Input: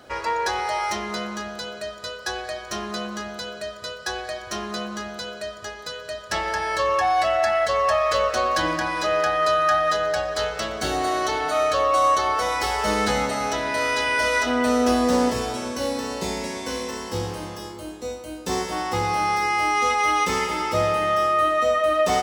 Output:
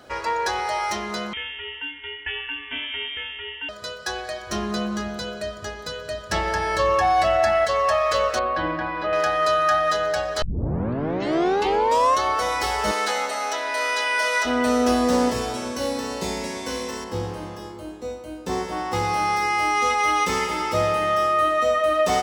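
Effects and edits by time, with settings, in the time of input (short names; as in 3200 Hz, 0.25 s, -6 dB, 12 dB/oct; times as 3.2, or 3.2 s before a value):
1.33–3.69 inverted band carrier 3400 Hz
4.49–7.65 low shelf 320 Hz +10 dB
8.39–9.13 air absorption 400 m
10.42 tape start 1.79 s
12.91–14.45 HPF 540 Hz
17.04–18.93 high shelf 2800 Hz -8.5 dB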